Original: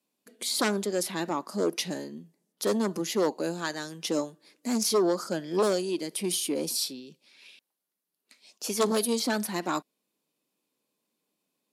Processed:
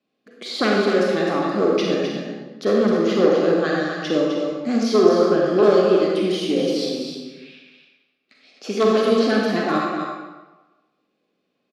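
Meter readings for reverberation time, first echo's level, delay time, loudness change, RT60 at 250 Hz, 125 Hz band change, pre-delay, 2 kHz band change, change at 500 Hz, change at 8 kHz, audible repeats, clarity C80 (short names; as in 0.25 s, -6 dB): 1.2 s, -6.5 dB, 0.257 s, +9.5 dB, 1.2 s, +9.5 dB, 36 ms, +10.0 dB, +12.0 dB, -8.0 dB, 1, 0.5 dB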